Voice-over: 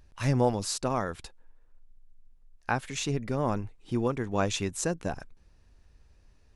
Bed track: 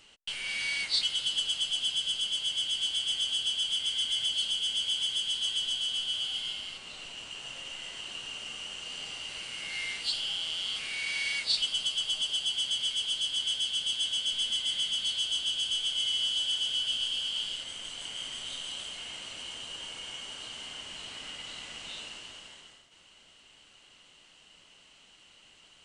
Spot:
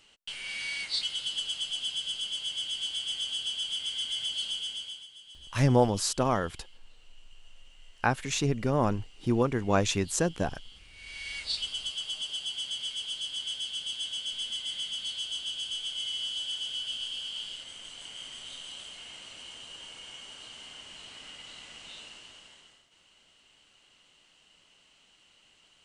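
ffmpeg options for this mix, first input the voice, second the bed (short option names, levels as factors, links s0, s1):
-filter_complex "[0:a]adelay=5350,volume=1.33[s0];[1:a]volume=3.98,afade=t=out:st=4.54:d=0.53:silence=0.149624,afade=t=in:st=10.93:d=0.53:silence=0.177828[s1];[s0][s1]amix=inputs=2:normalize=0"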